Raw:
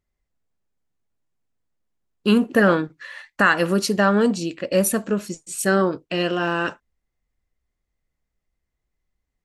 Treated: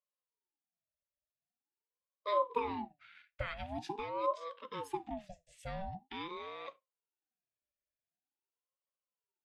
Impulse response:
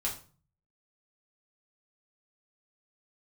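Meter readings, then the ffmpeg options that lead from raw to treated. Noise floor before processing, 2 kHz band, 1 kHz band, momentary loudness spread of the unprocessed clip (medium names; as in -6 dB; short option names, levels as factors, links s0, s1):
-81 dBFS, -26.0 dB, -12.0 dB, 10 LU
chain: -filter_complex "[0:a]asplit=3[s0][s1][s2];[s0]bandpass=f=270:t=q:w=8,volume=1[s3];[s1]bandpass=f=2290:t=q:w=8,volume=0.501[s4];[s2]bandpass=f=3010:t=q:w=8,volume=0.355[s5];[s3][s4][s5]amix=inputs=3:normalize=0,asplit=2[s6][s7];[1:a]atrim=start_sample=2205,atrim=end_sample=4410[s8];[s7][s8]afir=irnorm=-1:irlink=0,volume=0.112[s9];[s6][s9]amix=inputs=2:normalize=0,aeval=exprs='val(0)*sin(2*PI*570*n/s+570*0.45/0.45*sin(2*PI*0.45*n/s))':c=same,volume=0.668"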